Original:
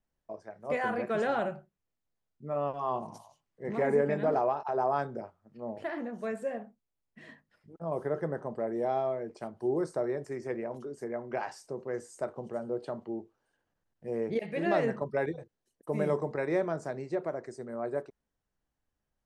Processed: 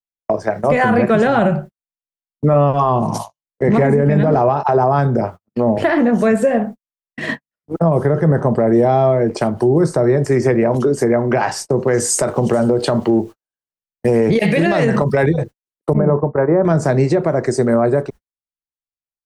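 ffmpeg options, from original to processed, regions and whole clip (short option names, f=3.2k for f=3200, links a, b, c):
-filter_complex "[0:a]asettb=1/sr,asplit=3[a][b][c];[a]atrim=end=11.874[d];[b]atrim=start=11.87:end=15.23,asetpts=PTS-STARTPTS,afade=t=in:d=0.004:c=qsin,afade=t=out:st=3.356:d=0.004:c=qsin,acompressor=threshold=-32dB:ratio=6:attack=3.2:release=140:knee=1:detection=peak,highshelf=f=2.6k:g=9[e];[c]atrim=start=15.226[f];[d][e]acrossfade=d=0.004:c1=hsin:c2=qsin[g];[g][f]acrossfade=d=0.004:c1=qsin:c2=hsin,asettb=1/sr,asplit=3[h][i][j];[h]atrim=end=15.934[k];[i]atrim=start=15.93:end=16.65,asetpts=PTS-STARTPTS,afade=t=in:d=0.004:c=qsin,afade=t=out:st=0.716:d=0.004:c=qsin,agate=range=-33dB:threshold=-31dB:ratio=3:release=100:detection=peak,lowpass=f=1.3k:w=0.5412,lowpass=f=1.3k:w=1.3066,lowshelf=f=460:g=-6[l];[j]atrim=start=16.646[m];[k][l]acrossfade=d=0.004:c1=hsin:c2=qsin[n];[n][m]acrossfade=d=0.004:c1=qsin:c2=hsin,agate=range=-55dB:threshold=-51dB:ratio=16:detection=peak,acrossover=split=180[o][p];[p]acompressor=threshold=-44dB:ratio=4[q];[o][q]amix=inputs=2:normalize=0,alimiter=level_in=35dB:limit=-1dB:release=50:level=0:latency=1,volume=-4.5dB"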